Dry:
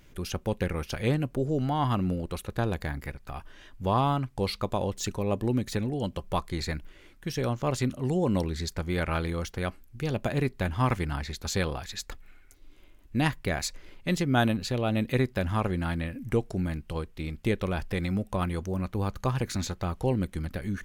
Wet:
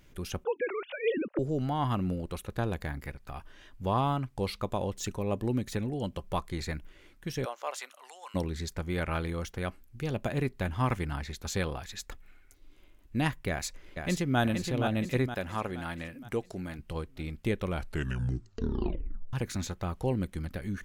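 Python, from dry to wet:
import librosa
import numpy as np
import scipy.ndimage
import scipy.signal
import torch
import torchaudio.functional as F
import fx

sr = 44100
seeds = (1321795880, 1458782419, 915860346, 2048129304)

y = fx.sine_speech(x, sr, at=(0.44, 1.39))
y = fx.highpass(y, sr, hz=fx.line((7.44, 490.0), (8.34, 1100.0)), slope=24, at=(7.44, 8.34), fade=0.02)
y = fx.echo_throw(y, sr, start_s=13.49, length_s=0.91, ms=470, feedback_pct=50, wet_db=-5.5)
y = fx.low_shelf(y, sr, hz=200.0, db=-11.0, at=(15.34, 16.79))
y = fx.edit(y, sr, fx.tape_stop(start_s=17.66, length_s=1.67), tone=tone)
y = fx.dynamic_eq(y, sr, hz=4500.0, q=3.7, threshold_db=-54.0, ratio=4.0, max_db=-4)
y = y * librosa.db_to_amplitude(-3.0)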